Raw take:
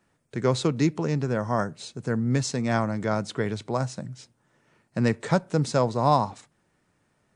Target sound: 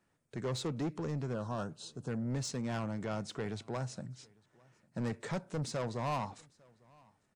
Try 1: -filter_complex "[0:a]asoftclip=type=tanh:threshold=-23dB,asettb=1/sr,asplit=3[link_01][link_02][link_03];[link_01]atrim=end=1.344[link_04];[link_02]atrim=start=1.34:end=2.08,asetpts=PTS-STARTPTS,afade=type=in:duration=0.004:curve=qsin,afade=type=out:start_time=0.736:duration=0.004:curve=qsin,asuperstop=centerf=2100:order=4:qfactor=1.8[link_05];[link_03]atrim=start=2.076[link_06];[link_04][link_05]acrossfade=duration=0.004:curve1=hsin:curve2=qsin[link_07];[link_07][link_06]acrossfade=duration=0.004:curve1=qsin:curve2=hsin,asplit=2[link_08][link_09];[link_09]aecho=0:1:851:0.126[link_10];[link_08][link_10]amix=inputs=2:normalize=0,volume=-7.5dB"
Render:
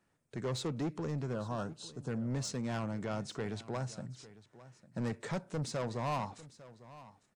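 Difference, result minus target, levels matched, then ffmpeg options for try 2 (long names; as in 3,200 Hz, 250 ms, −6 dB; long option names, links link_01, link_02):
echo-to-direct +9.5 dB
-filter_complex "[0:a]asoftclip=type=tanh:threshold=-23dB,asettb=1/sr,asplit=3[link_01][link_02][link_03];[link_01]atrim=end=1.344[link_04];[link_02]atrim=start=1.34:end=2.08,asetpts=PTS-STARTPTS,afade=type=in:duration=0.004:curve=qsin,afade=type=out:start_time=0.736:duration=0.004:curve=qsin,asuperstop=centerf=2100:order=4:qfactor=1.8[link_05];[link_03]atrim=start=2.076[link_06];[link_04][link_05]acrossfade=duration=0.004:curve1=hsin:curve2=qsin[link_07];[link_07][link_06]acrossfade=duration=0.004:curve1=qsin:curve2=hsin,asplit=2[link_08][link_09];[link_09]aecho=0:1:851:0.0422[link_10];[link_08][link_10]amix=inputs=2:normalize=0,volume=-7.5dB"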